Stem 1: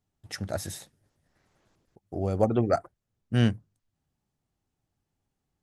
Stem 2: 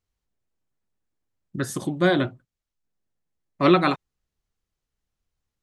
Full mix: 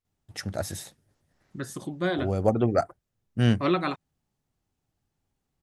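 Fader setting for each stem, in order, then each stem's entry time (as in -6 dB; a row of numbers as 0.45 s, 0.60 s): +1.0 dB, -7.5 dB; 0.05 s, 0.00 s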